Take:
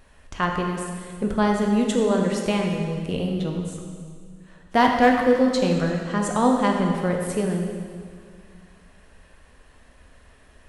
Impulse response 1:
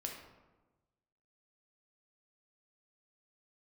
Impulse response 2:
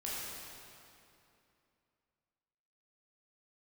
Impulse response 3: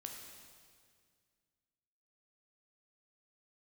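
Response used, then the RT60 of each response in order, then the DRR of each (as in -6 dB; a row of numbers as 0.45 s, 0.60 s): 3; 1.2 s, 2.7 s, 2.0 s; 0.5 dB, -7.5 dB, 1.0 dB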